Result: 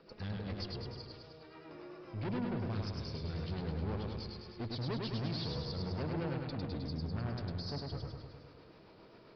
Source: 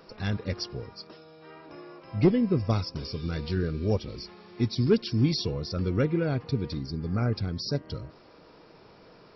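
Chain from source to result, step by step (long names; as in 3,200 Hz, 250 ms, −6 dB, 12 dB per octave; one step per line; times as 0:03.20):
rotating-speaker cabinet horn 7.5 Hz
tube saturation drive 34 dB, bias 0.55
downsampling to 11,025 Hz
feedback echo with a swinging delay time 103 ms, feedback 63%, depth 50 cents, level −3 dB
level −2.5 dB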